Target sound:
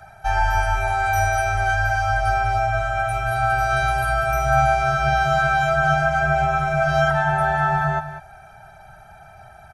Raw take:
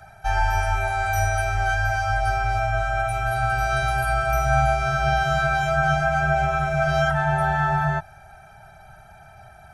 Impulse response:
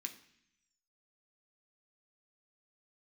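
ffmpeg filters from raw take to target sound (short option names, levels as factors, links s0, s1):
-af "equalizer=f=950:t=o:w=1.8:g=3,aecho=1:1:194:0.251"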